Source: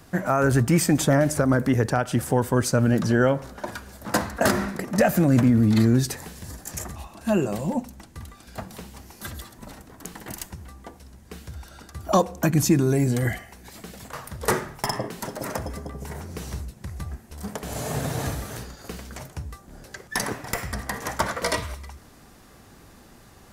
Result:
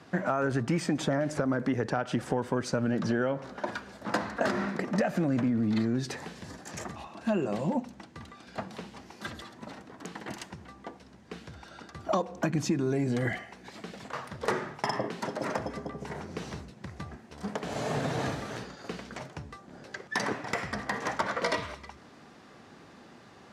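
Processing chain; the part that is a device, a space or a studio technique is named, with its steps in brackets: AM radio (band-pass 160–4400 Hz; compression, threshold -24 dBFS, peak gain reduction 9.5 dB; saturation -13 dBFS, distortion -29 dB)

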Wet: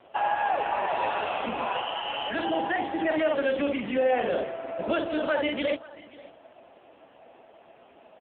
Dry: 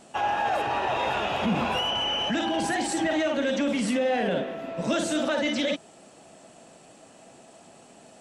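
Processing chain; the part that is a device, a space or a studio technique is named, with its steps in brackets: 1.36–2.38 s: Bessel high-pass 260 Hz, order 8; satellite phone (band-pass 340–3200 Hz; delay 535 ms -20 dB; trim +3 dB; AMR-NB 5.9 kbps 8 kHz)

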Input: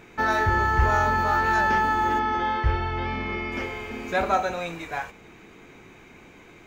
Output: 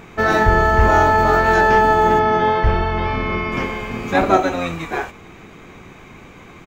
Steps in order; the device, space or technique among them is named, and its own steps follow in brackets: octave pedal (harmony voices -12 st -2 dB); trim +6 dB

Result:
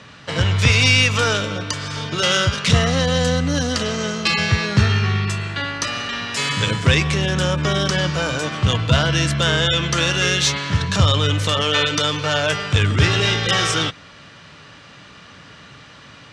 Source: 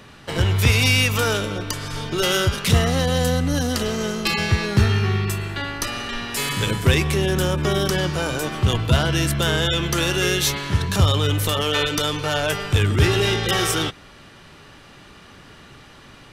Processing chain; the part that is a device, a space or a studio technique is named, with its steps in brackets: car door speaker (cabinet simulation 94–7300 Hz, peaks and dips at 230 Hz -4 dB, 370 Hz -10 dB, 800 Hz -5 dB); trim +4 dB

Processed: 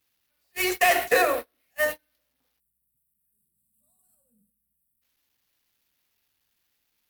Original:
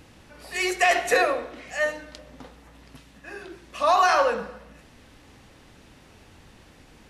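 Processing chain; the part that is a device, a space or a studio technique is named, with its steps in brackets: budget class-D amplifier (dead-time distortion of 0.074 ms; zero-crossing glitches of -22 dBFS); 2.59–5.02 s: time-frequency box 250–7600 Hz -29 dB; gate -27 dBFS, range -37 dB; 3.32–4.52 s: graphic EQ 125/250/500/1000/2000/4000/8000 Hz +6/+8/+10/-5/-7/+11/+6 dB

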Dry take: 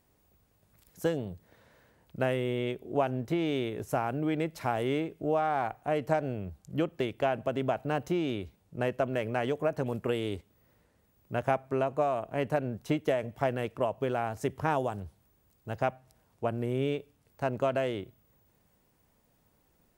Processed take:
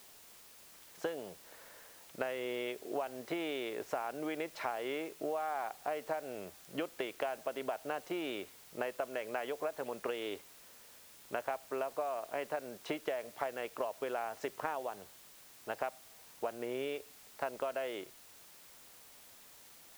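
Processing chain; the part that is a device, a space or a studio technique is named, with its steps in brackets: baby monitor (band-pass 500–3800 Hz; compression, threshold -40 dBFS, peak gain reduction 15.5 dB; white noise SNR 17 dB); trim +5.5 dB

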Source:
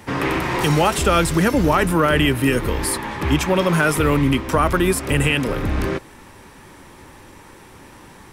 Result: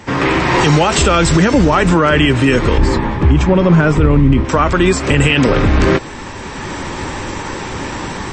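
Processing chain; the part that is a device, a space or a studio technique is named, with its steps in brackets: 2.78–4.45 s: tilt EQ -3 dB/octave; low-bitrate web radio (level rider gain up to 14 dB; peak limiter -8.5 dBFS, peak gain reduction 8 dB; trim +6.5 dB; MP3 32 kbps 22.05 kHz)

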